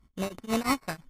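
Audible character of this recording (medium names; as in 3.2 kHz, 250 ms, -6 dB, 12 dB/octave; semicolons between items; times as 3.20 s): a buzz of ramps at a fixed pitch in blocks of 8 samples; tremolo triangle 5.9 Hz, depth 100%; aliases and images of a low sample rate 3.3 kHz, jitter 0%; MP3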